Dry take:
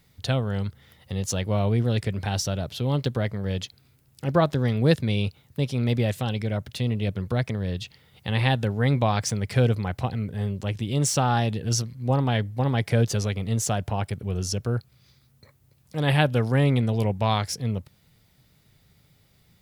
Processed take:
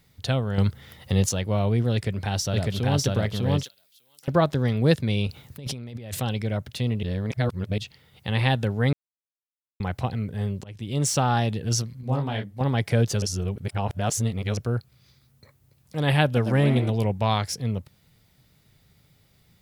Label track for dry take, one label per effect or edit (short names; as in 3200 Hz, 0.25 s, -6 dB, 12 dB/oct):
0.580000	1.290000	gain +7.5 dB
1.930000	3.080000	echo throw 0.6 s, feedback 15%, level -0.5 dB
3.630000	4.280000	differentiator
5.270000	6.200000	negative-ratio compressor -35 dBFS
7.030000	7.780000	reverse
8.930000	9.800000	mute
10.640000	11.180000	fade in equal-power, from -23.5 dB
12.010000	12.610000	detuned doubles each way 56 cents
13.220000	14.570000	reverse
16.250000	16.900000	frequency-shifting echo 0.114 s, feedback 36%, per repeat +90 Hz, level -9.5 dB